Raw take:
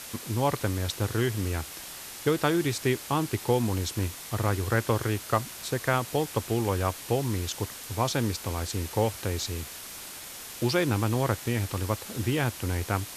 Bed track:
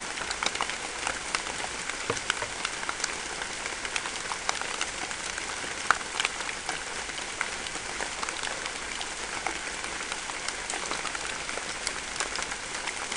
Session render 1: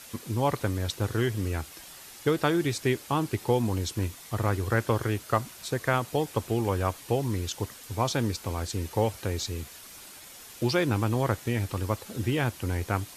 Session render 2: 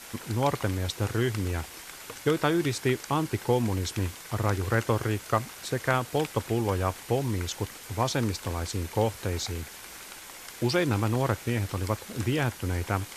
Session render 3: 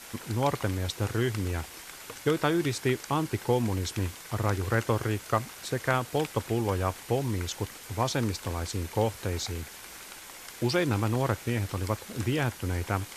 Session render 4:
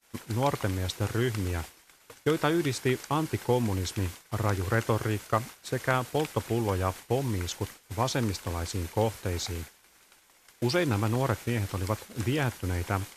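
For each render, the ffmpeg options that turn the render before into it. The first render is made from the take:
-af "afftdn=nr=7:nf=-42"
-filter_complex "[1:a]volume=-13dB[a];[0:a][a]amix=inputs=2:normalize=0"
-af "volume=-1dB"
-af "agate=range=-33dB:threshold=-34dB:ratio=3:detection=peak"

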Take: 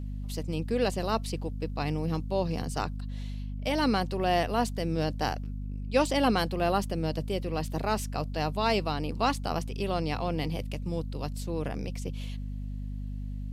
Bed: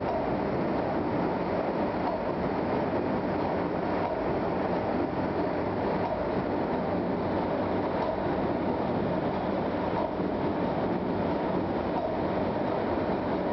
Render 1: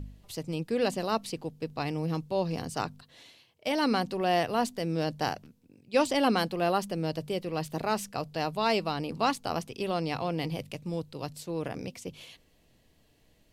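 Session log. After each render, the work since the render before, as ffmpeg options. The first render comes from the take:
-af "bandreject=f=50:t=h:w=4,bandreject=f=100:t=h:w=4,bandreject=f=150:t=h:w=4,bandreject=f=200:t=h:w=4,bandreject=f=250:t=h:w=4"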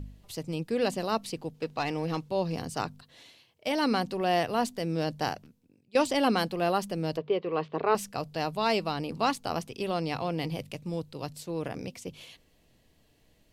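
-filter_complex "[0:a]asettb=1/sr,asplit=3[a][b][c];[a]atrim=end=1.544[d];[b]atrim=start=1.54:end=2.29,asetpts=PTS-STARTPTS,afade=t=in:d=0.004:c=qsin,afade=t=out:st=0.746:d=0.004:c=qsin,asplit=2[e][f];[f]highpass=f=720:p=1,volume=13dB,asoftclip=type=tanh:threshold=-17.5dB[g];[e][g]amix=inputs=2:normalize=0,lowpass=f=3.8k:p=1,volume=-6dB[h];[c]atrim=start=2.286[i];[d][h]acrossfade=d=0.004:c1=hsin:c2=qsin[j];[j][i]acrossfade=d=0.004:c1=qsin:c2=hsin,asettb=1/sr,asplit=3[k][l][m];[k]atrim=end=7.174[n];[l]atrim=start=7.17:end=7.95,asetpts=PTS-STARTPTS,afade=t=in:d=0.004:c=qsin,afade=t=out:st=0.776:d=0.004:c=qsin,highpass=110,equalizer=f=130:t=q:w=4:g=-9,equalizer=f=210:t=q:w=4:g=-7,equalizer=f=430:t=q:w=4:g=10,equalizer=f=1.1k:t=q:w=4:g=9,lowpass=f=3.4k:w=0.5412,lowpass=f=3.4k:w=1.3066[o];[m]atrim=start=7.946[p];[n][o]acrossfade=d=0.004:c1=hsin:c2=qsin[q];[q][p]acrossfade=d=0.004:c1=qsin:c2=hsin,asplit=2[r][s];[r]atrim=end=5.95,asetpts=PTS-STARTPTS,afade=t=out:st=5.11:d=0.84:c=qsin:silence=0.188365[t];[s]atrim=start=5.95,asetpts=PTS-STARTPTS,afade=t=in:d=0.004:c=hsin:silence=0.188365[u];[t][u]concat=n=2:v=0:a=1"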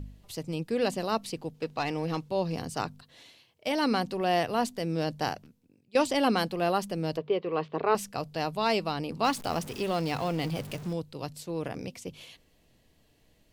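-filter_complex "[0:a]asettb=1/sr,asplit=3[a][b][c];[a]atrim=end=9.244[d];[b]atrim=start=9.24:end=10.93,asetpts=PTS-STARTPTS,afade=t=in:d=0.004:c=qsin,afade=t=out:st=1.686:d=0.004:c=qsin,aeval=exprs='val(0)+0.5*0.0119*sgn(val(0))':c=same[e];[c]atrim=start=10.926[f];[d][e]acrossfade=d=0.004:c1=hsin:c2=qsin[g];[g][f]acrossfade=d=0.004:c1=qsin:c2=hsin"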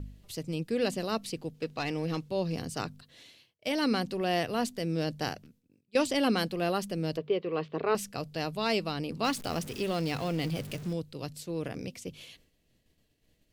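-af "agate=range=-33dB:threshold=-58dB:ratio=3:detection=peak,equalizer=f=890:t=o:w=0.94:g=-7"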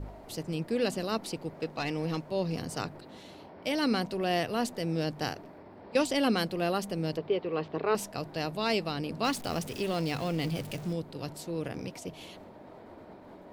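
-filter_complex "[1:a]volume=-21dB[a];[0:a][a]amix=inputs=2:normalize=0"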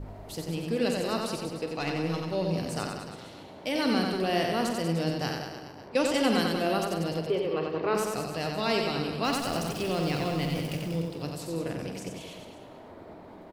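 -filter_complex "[0:a]asplit=2[a][b];[b]adelay=48,volume=-10.5dB[c];[a][c]amix=inputs=2:normalize=0,aecho=1:1:90|189|297.9|417.7|549.5:0.631|0.398|0.251|0.158|0.1"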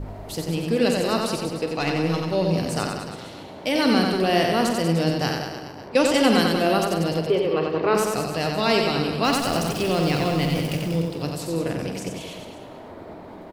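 -af "volume=7dB"

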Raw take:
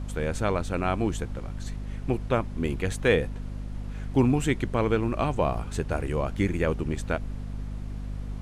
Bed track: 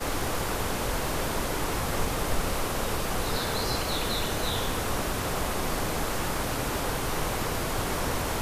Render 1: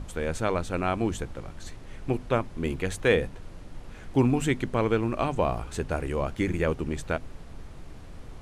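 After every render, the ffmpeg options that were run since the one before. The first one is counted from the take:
-af "bandreject=f=50:t=h:w=6,bandreject=f=100:t=h:w=6,bandreject=f=150:t=h:w=6,bandreject=f=200:t=h:w=6,bandreject=f=250:t=h:w=6"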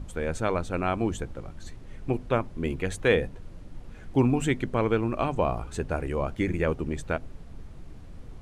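-af "afftdn=nr=6:nf=-44"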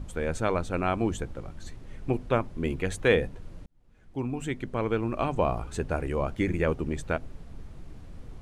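-filter_complex "[0:a]asplit=2[a][b];[a]atrim=end=3.66,asetpts=PTS-STARTPTS,afade=t=out:st=3.656:d=0.004:c=hsin[c];[b]atrim=start=3.66,asetpts=PTS-STARTPTS,afade=t=in:d=1.77[d];[c][d]concat=n=2:v=0:a=1"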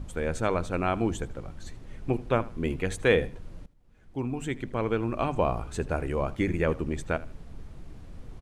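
-af "aecho=1:1:79|158:0.106|0.0286"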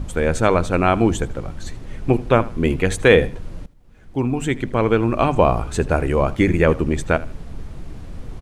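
-af "volume=10.5dB,alimiter=limit=-1dB:level=0:latency=1"

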